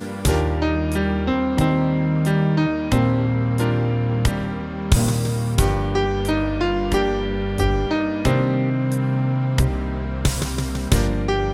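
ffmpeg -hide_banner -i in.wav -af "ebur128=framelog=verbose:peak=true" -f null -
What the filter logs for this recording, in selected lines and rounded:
Integrated loudness:
  I:         -21.0 LUFS
  Threshold: -31.0 LUFS
Loudness range:
  LRA:         1.4 LU
  Threshold: -40.9 LUFS
  LRA low:   -21.5 LUFS
  LRA high:  -20.1 LUFS
True peak:
  Peak:       -2.4 dBFS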